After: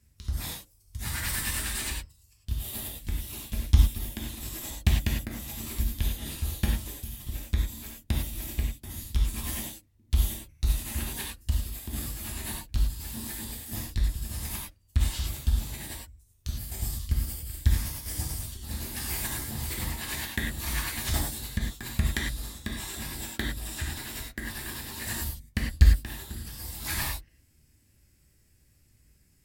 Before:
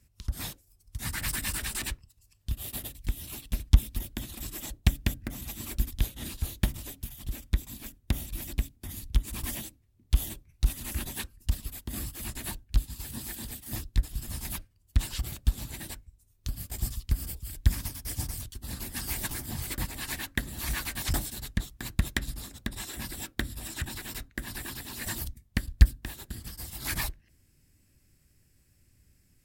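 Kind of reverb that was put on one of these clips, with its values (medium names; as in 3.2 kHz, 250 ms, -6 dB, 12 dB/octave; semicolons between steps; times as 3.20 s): gated-style reverb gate 130 ms flat, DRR -2 dB; trim -2.5 dB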